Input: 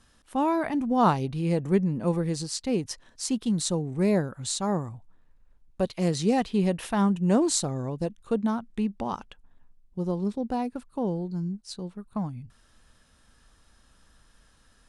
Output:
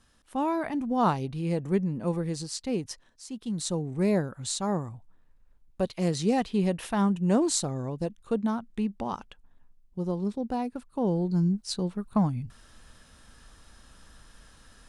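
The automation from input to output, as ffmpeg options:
-af "volume=17.5dB,afade=t=out:st=2.89:d=0.36:silence=0.281838,afade=t=in:st=3.25:d=0.57:silence=0.237137,afade=t=in:st=10.92:d=0.48:silence=0.398107"

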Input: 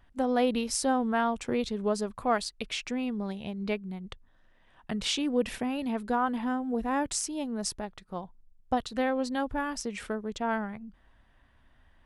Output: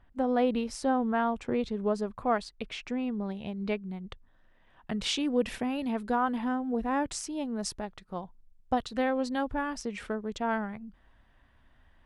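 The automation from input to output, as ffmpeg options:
-af "asetnsamples=n=441:p=0,asendcmd='3.35 lowpass f 3600;4.95 lowpass f 7600;6.48 lowpass f 3900;7.59 lowpass f 6500;9.55 lowpass f 4000;10.24 lowpass f 7700',lowpass=f=1.9k:p=1"

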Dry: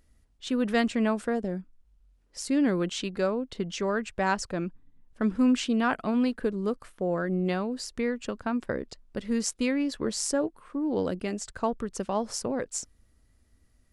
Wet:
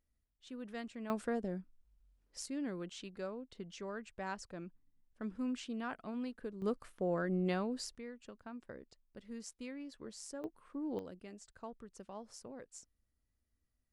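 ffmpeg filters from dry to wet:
-af "asetnsamples=n=441:p=0,asendcmd='1.1 volume volume -8dB;2.46 volume volume -15.5dB;6.62 volume volume -6.5dB;7.95 volume volume -19dB;10.44 volume volume -11dB;10.99 volume volume -19.5dB',volume=-19.5dB"

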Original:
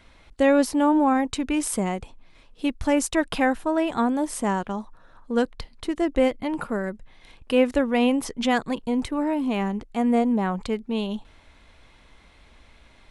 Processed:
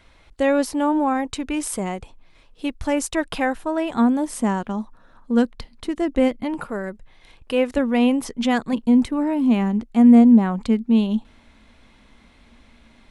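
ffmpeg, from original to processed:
-af "asetnsamples=n=441:p=0,asendcmd='3.94 equalizer g 8;6.54 equalizer g -3.5;7.77 equalizer g 5;8.73 equalizer g 12.5',equalizer=f=230:t=o:w=0.43:g=-3.5"

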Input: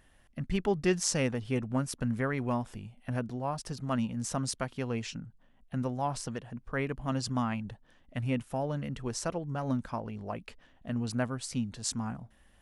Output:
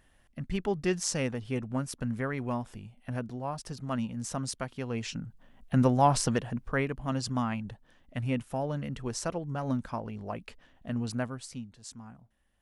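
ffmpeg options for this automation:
-af "volume=9.5dB,afade=t=in:st=4.88:d=0.98:silence=0.281838,afade=t=out:st=6.38:d=0.52:silence=0.354813,afade=t=out:st=11.02:d=0.7:silence=0.237137"

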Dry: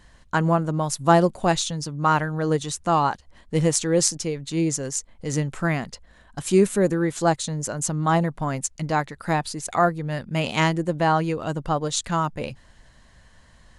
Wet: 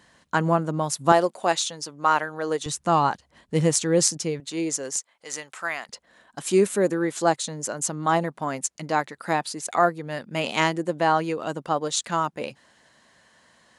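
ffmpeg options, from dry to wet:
-af "asetnsamples=n=441:p=0,asendcmd='1.12 highpass f 410;2.66 highpass f 110;4.4 highpass f 350;4.96 highpass f 850;5.89 highpass f 250',highpass=170"

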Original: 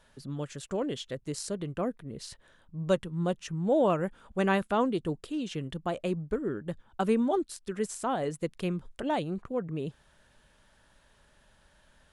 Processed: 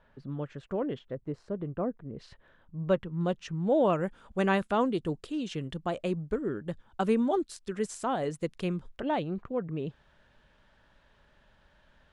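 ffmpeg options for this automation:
-af "asetnsamples=n=441:p=0,asendcmd='0.99 lowpass f 1200;2.17 lowpass f 2500;3.21 lowpass f 5000;3.93 lowpass f 8400;8.91 lowpass f 3700',lowpass=2k"

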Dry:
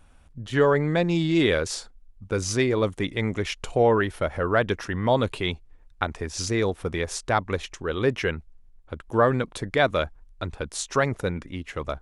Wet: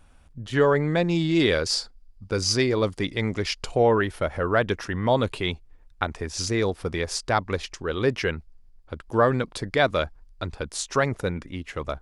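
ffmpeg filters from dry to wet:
-af "asetnsamples=n=441:p=0,asendcmd='1.4 equalizer g 13.5;3.66 equalizer g 3;6.6 equalizer g 9;10.63 equalizer g 3',equalizer=f=4.8k:t=o:w=0.3:g=2.5"

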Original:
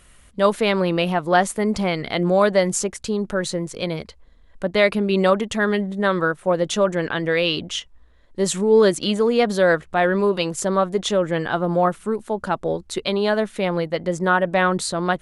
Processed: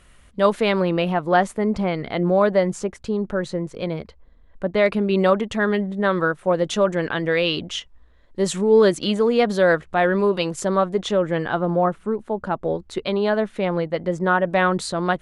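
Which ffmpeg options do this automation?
-af "asetnsamples=n=441:p=0,asendcmd='0.83 lowpass f 2400;1.53 lowpass f 1500;4.86 lowpass f 3000;6.17 lowpass f 5200;10.85 lowpass f 2900;11.7 lowpass f 1300;12.65 lowpass f 2300;14.51 lowpass f 4900',lowpass=f=4.4k:p=1"

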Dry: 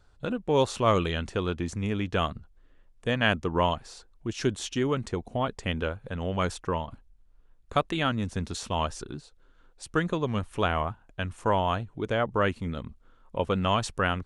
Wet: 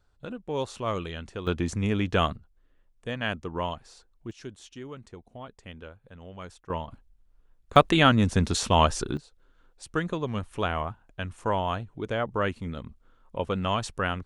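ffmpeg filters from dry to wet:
-af "asetnsamples=n=441:p=0,asendcmd='1.47 volume volume 3dB;2.36 volume volume -6dB;4.31 volume volume -14dB;6.7 volume volume -2dB;7.76 volume volume 8dB;9.17 volume volume -2dB',volume=-7dB"

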